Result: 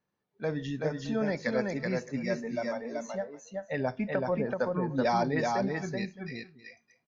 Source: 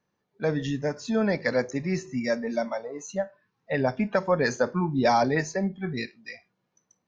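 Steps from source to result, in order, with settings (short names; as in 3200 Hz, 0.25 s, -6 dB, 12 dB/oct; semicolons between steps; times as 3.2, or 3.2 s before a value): LPF 6200 Hz 12 dB/oct; 4.1–4.6 treble ducked by the level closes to 750 Hz, closed at -20.5 dBFS; tapped delay 0.379/0.616 s -3/-19.5 dB; gain -6 dB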